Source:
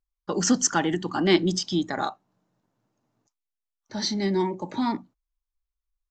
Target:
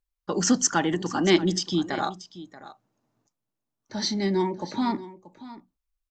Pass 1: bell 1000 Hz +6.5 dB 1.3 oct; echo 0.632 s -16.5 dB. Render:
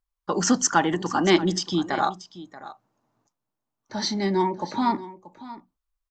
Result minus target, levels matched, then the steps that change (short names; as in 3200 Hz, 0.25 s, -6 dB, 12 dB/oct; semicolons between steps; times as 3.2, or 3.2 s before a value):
1000 Hz band +4.0 dB
remove: bell 1000 Hz +6.5 dB 1.3 oct